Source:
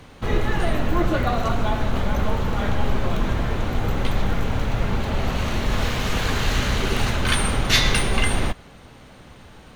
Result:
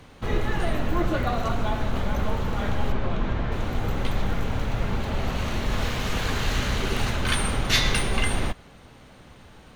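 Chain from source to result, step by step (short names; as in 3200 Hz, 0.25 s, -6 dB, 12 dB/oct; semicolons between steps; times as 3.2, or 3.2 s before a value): 2.92–3.52 Bessel low-pass 3600 Hz, order 2; gain -3.5 dB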